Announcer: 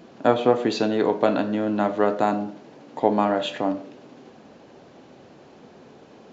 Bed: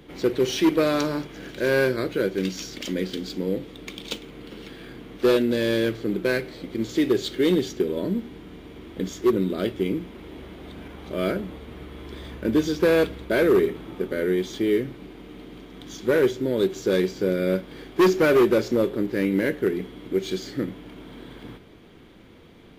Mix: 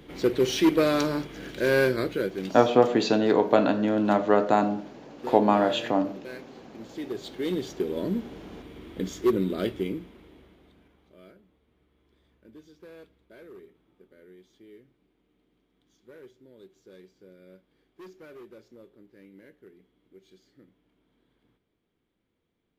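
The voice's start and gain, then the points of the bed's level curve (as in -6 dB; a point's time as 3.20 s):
2.30 s, 0.0 dB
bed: 2.03 s -1 dB
2.99 s -17 dB
6.76 s -17 dB
8.02 s -2.5 dB
9.69 s -2.5 dB
11.37 s -29 dB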